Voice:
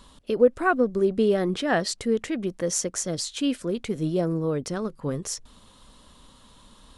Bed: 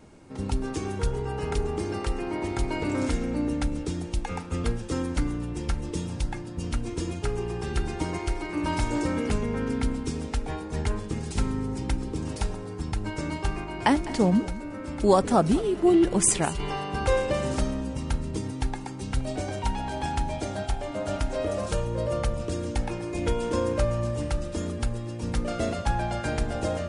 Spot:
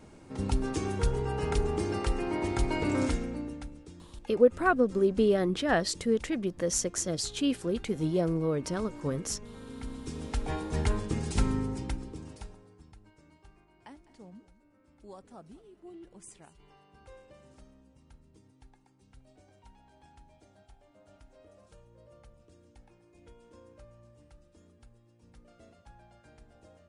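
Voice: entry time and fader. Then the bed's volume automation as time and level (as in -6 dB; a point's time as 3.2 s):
4.00 s, -3.0 dB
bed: 3.03 s -1 dB
3.8 s -18.5 dB
9.58 s -18.5 dB
10.52 s -0.5 dB
11.55 s -0.5 dB
13.17 s -29 dB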